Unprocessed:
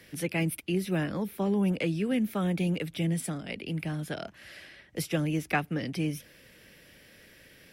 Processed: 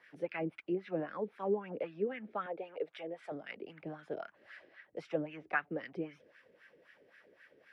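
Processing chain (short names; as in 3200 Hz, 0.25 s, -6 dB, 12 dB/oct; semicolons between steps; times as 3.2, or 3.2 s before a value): treble ducked by the level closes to 2600 Hz, closed at -24 dBFS; 2.46–3.32 resonant low shelf 320 Hz -14 dB, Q 1.5; wah 3.8 Hz 400–1700 Hz, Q 3.2; gain +2.5 dB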